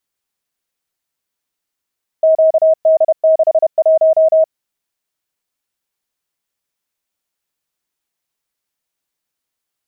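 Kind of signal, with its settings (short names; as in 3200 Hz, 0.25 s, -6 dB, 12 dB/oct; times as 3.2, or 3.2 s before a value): Morse "QD61" 31 wpm 637 Hz -6.5 dBFS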